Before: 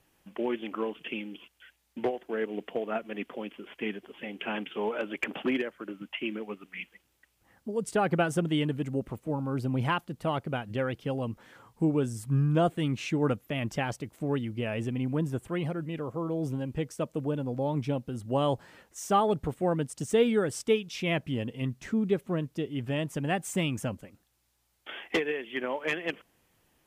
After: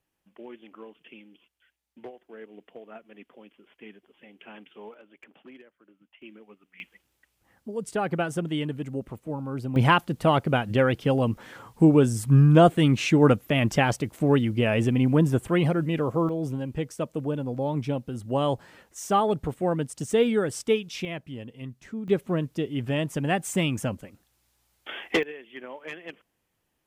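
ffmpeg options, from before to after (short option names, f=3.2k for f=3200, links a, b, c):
-af "asetnsamples=n=441:p=0,asendcmd='4.94 volume volume -20dB;6.22 volume volume -13dB;6.8 volume volume -1dB;9.76 volume volume 9dB;16.29 volume volume 2dB;21.05 volume volume -6.5dB;22.08 volume volume 4dB;25.23 volume volume -8dB',volume=-12.5dB"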